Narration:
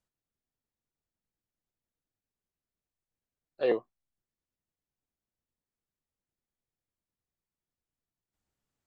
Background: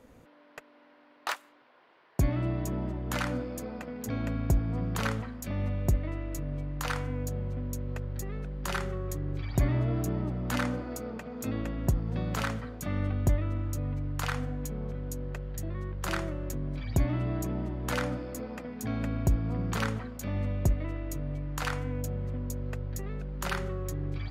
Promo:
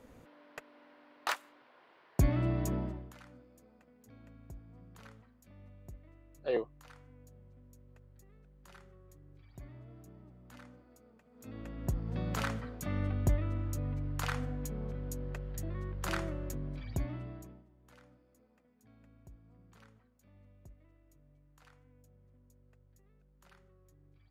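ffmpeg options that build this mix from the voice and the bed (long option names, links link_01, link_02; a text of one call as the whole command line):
ffmpeg -i stem1.wav -i stem2.wav -filter_complex "[0:a]adelay=2850,volume=-5dB[link_01];[1:a]volume=19.5dB,afade=type=out:start_time=2.73:duration=0.4:silence=0.0707946,afade=type=in:start_time=11.3:duration=0.98:silence=0.0944061,afade=type=out:start_time=16.36:duration=1.28:silence=0.0473151[link_02];[link_01][link_02]amix=inputs=2:normalize=0" out.wav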